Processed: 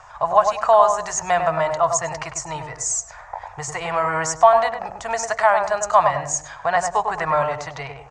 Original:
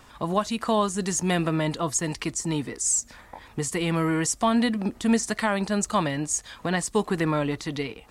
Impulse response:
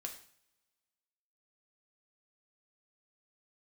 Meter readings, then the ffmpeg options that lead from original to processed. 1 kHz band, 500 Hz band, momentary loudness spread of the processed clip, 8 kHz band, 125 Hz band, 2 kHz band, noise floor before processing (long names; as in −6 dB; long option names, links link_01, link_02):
+12.0 dB, +8.5 dB, 15 LU, +1.5 dB, −6.0 dB, +5.5 dB, −51 dBFS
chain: -filter_complex "[0:a]firequalizer=gain_entry='entry(130,0);entry(220,-26);entry(660,13);entry(3500,-6);entry(6500,5);entry(12000,-26)':delay=0.05:min_phase=1,asplit=2[link_01][link_02];[link_02]adelay=100,lowpass=frequency=990:poles=1,volume=-3.5dB,asplit=2[link_03][link_04];[link_04]adelay=100,lowpass=frequency=990:poles=1,volume=0.4,asplit=2[link_05][link_06];[link_06]adelay=100,lowpass=frequency=990:poles=1,volume=0.4,asplit=2[link_07][link_08];[link_08]adelay=100,lowpass=frequency=990:poles=1,volume=0.4,asplit=2[link_09][link_10];[link_10]adelay=100,lowpass=frequency=990:poles=1,volume=0.4[link_11];[link_01][link_03][link_05][link_07][link_09][link_11]amix=inputs=6:normalize=0"